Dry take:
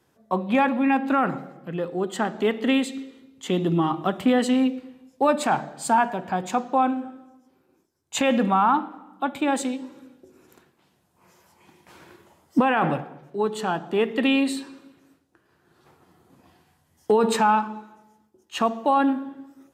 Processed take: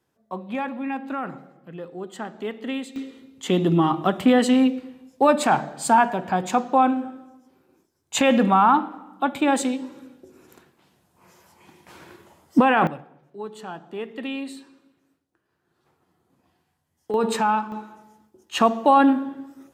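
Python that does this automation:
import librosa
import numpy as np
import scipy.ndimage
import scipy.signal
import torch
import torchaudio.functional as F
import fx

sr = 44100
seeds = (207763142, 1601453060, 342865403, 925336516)

y = fx.gain(x, sr, db=fx.steps((0.0, -8.0), (2.96, 3.0), (12.87, -10.0), (17.14, -2.0), (17.72, 4.5)))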